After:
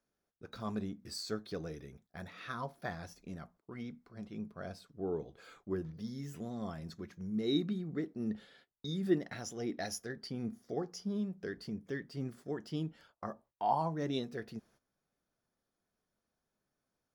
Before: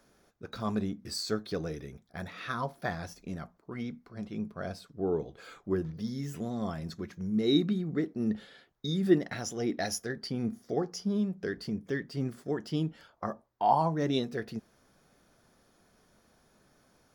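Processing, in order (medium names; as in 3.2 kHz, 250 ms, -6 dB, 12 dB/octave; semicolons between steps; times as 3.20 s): gate -57 dBFS, range -15 dB; trim -6.5 dB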